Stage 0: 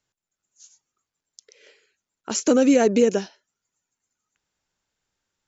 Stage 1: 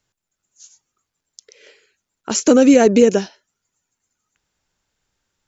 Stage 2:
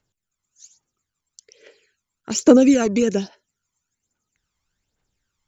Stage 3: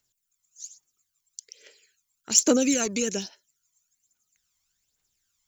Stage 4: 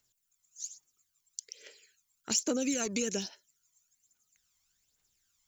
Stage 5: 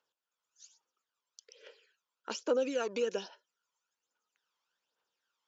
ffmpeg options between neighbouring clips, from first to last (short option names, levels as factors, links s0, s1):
-af "lowshelf=f=110:g=5.5,volume=1.88"
-af "aphaser=in_gain=1:out_gain=1:delay=1:decay=0.59:speed=1.2:type=triangular,volume=0.501"
-af "crystalizer=i=7:c=0,volume=0.299"
-af "acompressor=threshold=0.0355:ratio=4"
-af "highpass=390,equalizer=f=500:t=q:w=4:g=8,equalizer=f=970:t=q:w=4:g=7,equalizer=f=1400:t=q:w=4:g=4,equalizer=f=2100:t=q:w=4:g=-9,equalizer=f=4100:t=q:w=4:g=-7,lowpass=f=4200:w=0.5412,lowpass=f=4200:w=1.3066"